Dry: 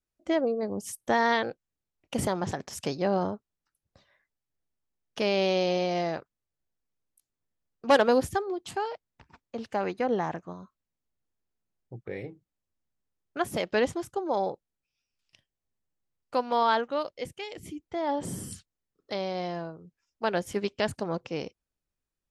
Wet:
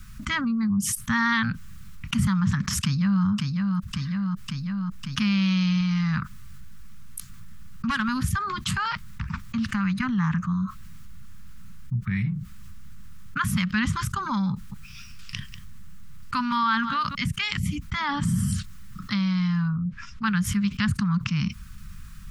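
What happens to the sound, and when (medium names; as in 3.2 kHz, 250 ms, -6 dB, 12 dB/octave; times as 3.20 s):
2.81–3.24 s: echo throw 550 ms, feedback 50%, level -11 dB
5.80–10.18 s: compression, threshold -27 dBFS
14.52–17.15 s: delay 192 ms -23 dB
19.68–20.24 s: low-pass 2.3 kHz -> 5.2 kHz
whole clip: elliptic band-stop 200–1200 Hz, stop band 40 dB; tilt shelf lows +7 dB, about 1.4 kHz; level flattener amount 70%; trim +3.5 dB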